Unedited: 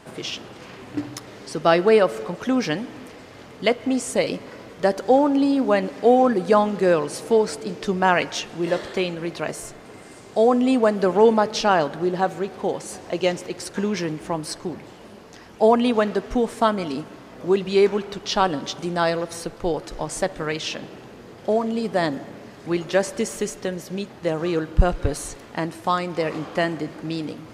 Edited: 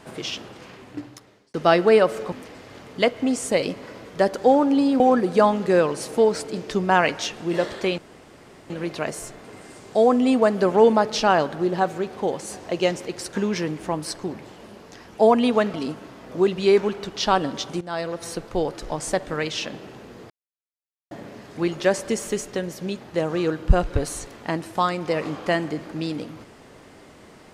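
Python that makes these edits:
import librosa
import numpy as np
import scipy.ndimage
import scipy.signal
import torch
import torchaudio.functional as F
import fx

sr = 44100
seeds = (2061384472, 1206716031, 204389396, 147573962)

y = fx.edit(x, sr, fx.fade_out_span(start_s=0.39, length_s=1.15),
    fx.cut(start_s=2.32, length_s=0.64),
    fx.cut(start_s=5.64, length_s=0.49),
    fx.insert_room_tone(at_s=9.11, length_s=0.72),
    fx.cut(start_s=16.15, length_s=0.68),
    fx.fade_in_from(start_s=18.9, length_s=0.51, floor_db=-15.0),
    fx.silence(start_s=21.39, length_s=0.81), tone=tone)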